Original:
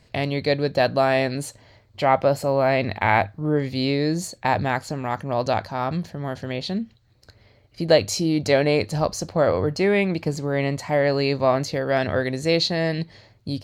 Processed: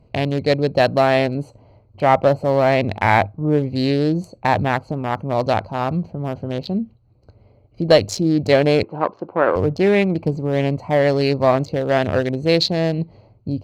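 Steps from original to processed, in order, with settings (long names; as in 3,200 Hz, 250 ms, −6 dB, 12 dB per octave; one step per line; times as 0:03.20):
adaptive Wiener filter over 25 samples
in parallel at −3 dB: asymmetric clip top −14 dBFS
0:08.83–0:09.56: on the sum: loudspeaker in its box 310–2,800 Hz, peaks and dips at 350 Hz +4 dB, 630 Hz −5 dB, 990 Hz +6 dB, 1,500 Hz +7 dB, 2,300 Hz −3 dB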